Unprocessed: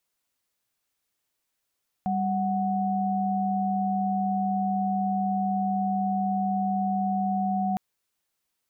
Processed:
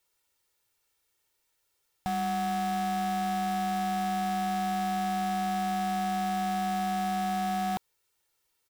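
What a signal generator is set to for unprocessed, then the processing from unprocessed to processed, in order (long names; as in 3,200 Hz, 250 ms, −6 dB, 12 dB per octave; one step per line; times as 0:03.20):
held notes G3/F#5 sine, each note −26 dBFS 5.71 s
comb filter 2.2 ms, depth 56%
in parallel at −8.5 dB: wrap-around overflow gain 27.5 dB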